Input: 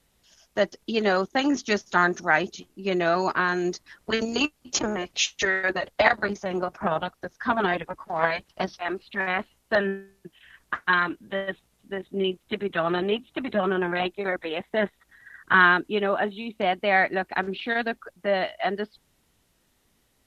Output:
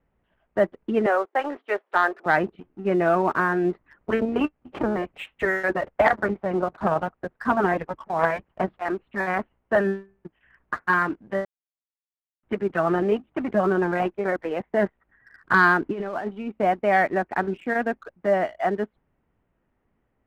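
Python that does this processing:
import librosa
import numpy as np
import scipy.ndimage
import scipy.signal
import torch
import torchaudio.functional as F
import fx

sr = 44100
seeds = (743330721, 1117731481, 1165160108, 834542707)

y = fx.highpass(x, sr, hz=440.0, slope=24, at=(1.06, 2.26))
y = fx.over_compress(y, sr, threshold_db=-32.0, ratio=-1.0, at=(15.81, 16.28))
y = fx.edit(y, sr, fx.silence(start_s=11.45, length_s=0.98), tone=tone)
y = scipy.signal.sosfilt(scipy.signal.bessel(8, 1400.0, 'lowpass', norm='mag', fs=sr, output='sos'), y)
y = fx.leveller(y, sr, passes=1)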